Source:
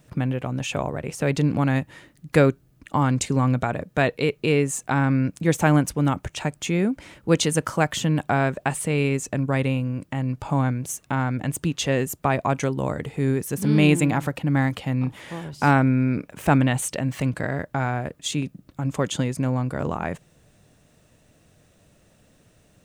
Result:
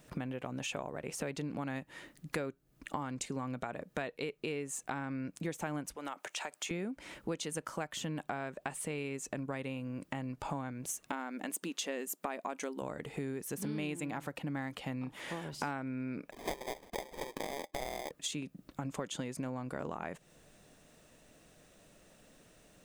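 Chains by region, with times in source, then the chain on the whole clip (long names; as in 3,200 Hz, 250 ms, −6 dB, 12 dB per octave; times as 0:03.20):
0:05.96–0:06.71: high-pass filter 570 Hz + downward compressor 2.5 to 1, threshold −31 dBFS
0:11.08–0:12.82: linear-phase brick-wall high-pass 180 Hz + high-shelf EQ 6,100 Hz +5 dB
0:16.31–0:18.11: linear-phase brick-wall band-pass 320–5,200 Hz + sample-rate reduction 1,400 Hz
whole clip: parametric band 96 Hz −12 dB 1.4 octaves; downward compressor 6 to 1, threshold −35 dBFS; level −1 dB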